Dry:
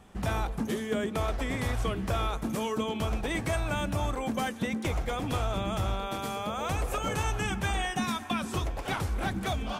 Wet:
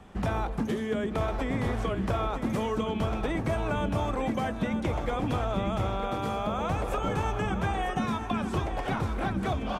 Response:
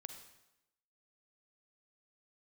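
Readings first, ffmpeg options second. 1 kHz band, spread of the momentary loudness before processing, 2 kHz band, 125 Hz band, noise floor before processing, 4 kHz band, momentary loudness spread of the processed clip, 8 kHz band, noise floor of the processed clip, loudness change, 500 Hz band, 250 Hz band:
+2.0 dB, 3 LU, −1.5 dB, +1.5 dB, −39 dBFS, −4.0 dB, 2 LU, −8.5 dB, −35 dBFS, +1.5 dB, +2.5 dB, +3.0 dB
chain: -filter_complex "[0:a]lowpass=frequency=3200:poles=1,acrossover=split=140|1400[link_01][link_02][link_03];[link_01]acompressor=threshold=-36dB:ratio=4[link_04];[link_02]acompressor=threshold=-32dB:ratio=4[link_05];[link_03]acompressor=threshold=-47dB:ratio=4[link_06];[link_04][link_05][link_06]amix=inputs=3:normalize=0,asplit=2[link_07][link_08];[link_08]aecho=0:1:950:0.376[link_09];[link_07][link_09]amix=inputs=2:normalize=0,volume=4.5dB"

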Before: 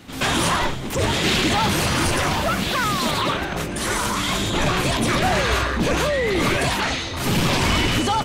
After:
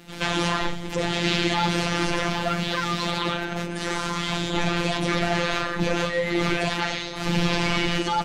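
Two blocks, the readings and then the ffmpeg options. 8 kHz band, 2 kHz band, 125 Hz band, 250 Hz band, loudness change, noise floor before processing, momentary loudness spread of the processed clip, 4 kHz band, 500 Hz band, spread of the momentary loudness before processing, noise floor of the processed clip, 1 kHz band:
−9.5 dB, −3.5 dB, −4.5 dB, −3.0 dB, −4.0 dB, −28 dBFS, 5 LU, −4.0 dB, −3.5 dB, 4 LU, −32 dBFS, −4.5 dB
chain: -filter_complex "[0:a]bandreject=frequency=1100:width=8.5,afftfilt=real='hypot(re,im)*cos(PI*b)':imag='0':win_size=1024:overlap=0.75,acrossover=split=6500[link_01][link_02];[link_02]acompressor=threshold=-49dB:ratio=4:attack=1:release=60[link_03];[link_01][link_03]amix=inputs=2:normalize=0"

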